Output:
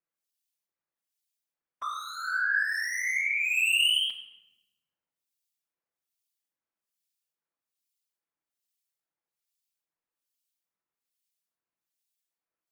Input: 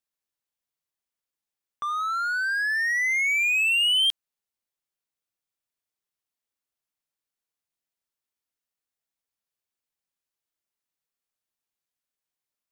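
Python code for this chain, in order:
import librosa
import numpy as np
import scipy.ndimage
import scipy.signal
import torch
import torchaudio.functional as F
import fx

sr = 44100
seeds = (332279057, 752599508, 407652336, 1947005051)

p1 = scipy.signal.sosfilt(scipy.signal.butter(2, 150.0, 'highpass', fs=sr, output='sos'), x)
p2 = fx.high_shelf(p1, sr, hz=4900.0, db=4.5)
p3 = fx.whisperise(p2, sr, seeds[0])
p4 = 10.0 ** (-26.5 / 20.0) * np.tanh(p3 / 10.0 ** (-26.5 / 20.0))
p5 = p3 + F.gain(torch.from_numpy(p4), -5.0).numpy()
p6 = fx.harmonic_tremolo(p5, sr, hz=1.2, depth_pct=100, crossover_hz=2200.0)
p7 = fx.room_shoebox(p6, sr, seeds[1], volume_m3=560.0, walls='mixed', distance_m=0.72)
y = F.gain(torch.from_numpy(p7), -2.5).numpy()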